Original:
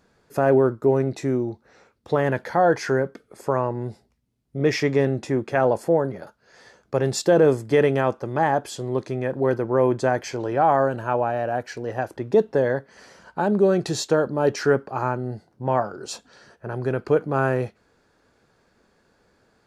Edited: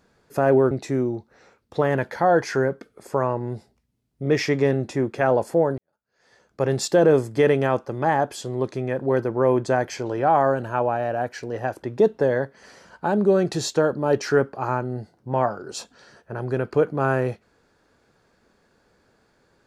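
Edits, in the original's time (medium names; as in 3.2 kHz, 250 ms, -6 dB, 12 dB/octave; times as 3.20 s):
0.71–1.05 s: delete
6.12–6.99 s: fade in quadratic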